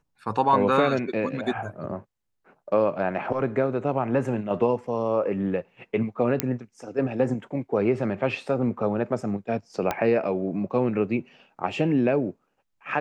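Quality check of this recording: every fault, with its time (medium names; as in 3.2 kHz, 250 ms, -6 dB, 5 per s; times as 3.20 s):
6.40 s: pop -5 dBFS
9.91 s: pop -11 dBFS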